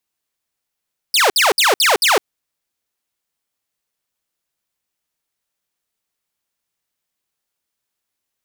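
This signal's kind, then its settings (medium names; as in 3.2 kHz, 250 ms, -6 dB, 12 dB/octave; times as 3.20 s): burst of laser zaps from 5.3 kHz, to 350 Hz, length 0.16 s saw, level -8 dB, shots 5, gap 0.06 s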